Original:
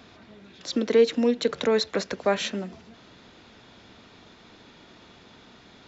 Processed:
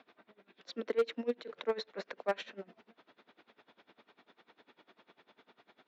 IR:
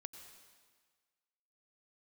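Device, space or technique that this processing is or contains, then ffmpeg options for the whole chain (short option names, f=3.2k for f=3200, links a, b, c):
helicopter radio: -af "highpass=340,lowpass=2.8k,aeval=exprs='val(0)*pow(10,-23*(0.5-0.5*cos(2*PI*10*n/s))/20)':c=same,asoftclip=type=hard:threshold=-18.5dB,volume=-4.5dB"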